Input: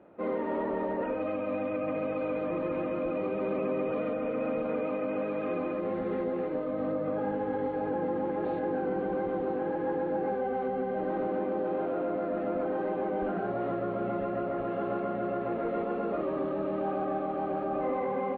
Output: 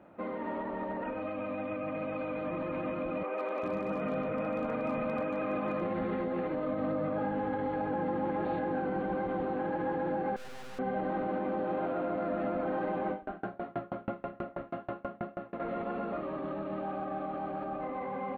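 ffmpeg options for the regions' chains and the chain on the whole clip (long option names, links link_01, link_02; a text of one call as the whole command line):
ffmpeg -i in.wav -filter_complex "[0:a]asettb=1/sr,asplit=3[link_01][link_02][link_03];[link_01]atrim=end=3.234[link_04];[link_02]atrim=start=3.23:end=5.81,asetpts=PTS-STARTPTS,afade=type=in:duration=0.004:curve=qsin,afade=type=out:start_time=2.576:duration=0.004:curve=qsin,asoftclip=type=hard:threshold=-23dB,acrossover=split=360|2900[link_05][link_06][link_07];[link_07]adelay=150[link_08];[link_05]adelay=400[link_09];[link_09][link_06][link_08]amix=inputs=3:normalize=0,atrim=end_sample=113778[link_10];[link_03]atrim=start=5.806[link_11];[link_04][link_10]acrossfade=duration=0.004:curve1=hsin:curve2=qsin[link_12];[link_12][link_11]acrossfade=duration=0.004:curve1=qsin:curve2=hsin,asettb=1/sr,asplit=3[link_13][link_14][link_15];[link_13]atrim=end=10.364[link_16];[link_14]atrim=start=10.36:end=10.79,asetpts=PTS-STARTPTS,afade=type=in:duration=0.004:curve=qsin,afade=type=out:start_time=0.426:duration=0.004:curve=qsin,equalizer=frequency=460:width_type=o:width=0.27:gain=10.5,aeval=exprs='max(val(0),0)':channel_layout=same,aeval=exprs='(tanh(126*val(0)+0.25)-tanh(0.25))/126':channel_layout=same[link_17];[link_15]atrim=start=10.786[link_18];[link_16][link_17]acrossfade=duration=0.004:curve1=hsin:curve2=qsin[link_19];[link_19][link_18]acrossfade=duration=0.004:curve1=qsin:curve2=hsin,asettb=1/sr,asplit=3[link_20][link_21][link_22];[link_20]atrim=end=13.114[link_23];[link_21]atrim=start=13.11:end=15.6,asetpts=PTS-STARTPTS,afade=type=in:duration=0.004:curve=qsin,afade=type=out:start_time=2.486:duration=0.004:curve=qsin,aecho=1:1:81:0.531,atrim=end_sample=109809,aeval=exprs='val(0)*pow(10,-36*if(lt(mod(6.2*n/s,1),2*abs(6.2)/1000),1-mod(6.2*n/s,1)/(2*abs(6.2)/1000),(mod(6.2*n/s,1)-2*abs(6.2)/1000)/(1-2*abs(6.2)/1000))/20)':channel_layout=same[link_24];[link_22]atrim=start=15.596[link_25];[link_23][link_24]acrossfade=duration=0.004:curve1=hsin:curve2=qsin[link_26];[link_26][link_25]acrossfade=duration=0.004:curve1=qsin:curve2=hsin,alimiter=level_in=4.5dB:limit=-24dB:level=0:latency=1:release=69,volume=-4.5dB,equalizer=frequency=420:width=1.9:gain=-8.5,dynaudnorm=framelen=200:gausssize=31:maxgain=4dB,volume=3dB" out.wav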